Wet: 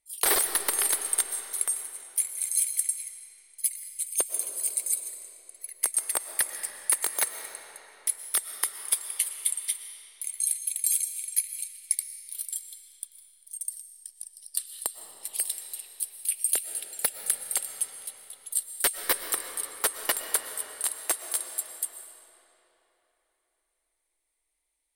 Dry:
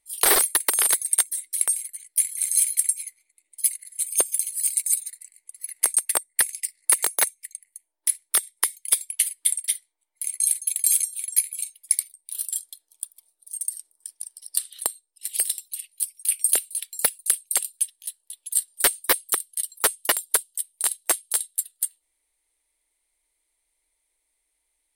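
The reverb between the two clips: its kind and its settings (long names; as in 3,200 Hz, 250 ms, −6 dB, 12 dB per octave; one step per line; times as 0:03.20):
comb and all-pass reverb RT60 3.8 s, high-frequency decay 0.75×, pre-delay 80 ms, DRR 7 dB
level −5.5 dB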